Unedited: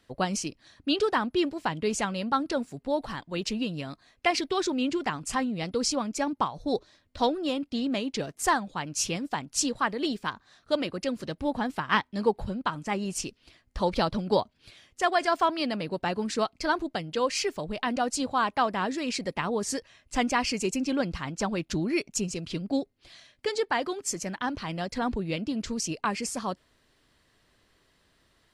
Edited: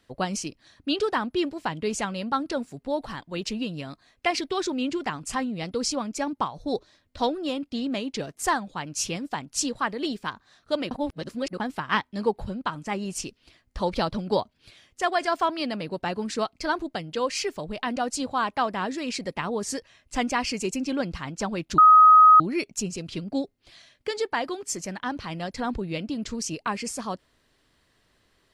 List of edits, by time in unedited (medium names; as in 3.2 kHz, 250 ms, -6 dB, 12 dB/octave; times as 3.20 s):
10.91–11.60 s: reverse
21.78 s: add tone 1.26 kHz -9.5 dBFS 0.62 s